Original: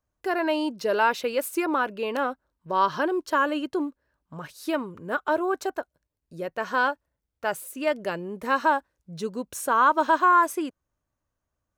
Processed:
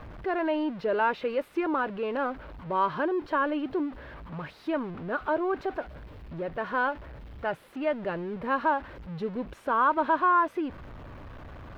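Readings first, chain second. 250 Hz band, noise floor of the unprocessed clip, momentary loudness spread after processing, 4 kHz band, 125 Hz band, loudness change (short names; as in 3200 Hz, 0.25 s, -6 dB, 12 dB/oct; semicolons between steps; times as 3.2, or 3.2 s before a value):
-1.5 dB, -84 dBFS, 18 LU, -8.5 dB, +4.0 dB, -3.5 dB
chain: zero-crossing step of -33 dBFS; air absorption 400 m; gain -2.5 dB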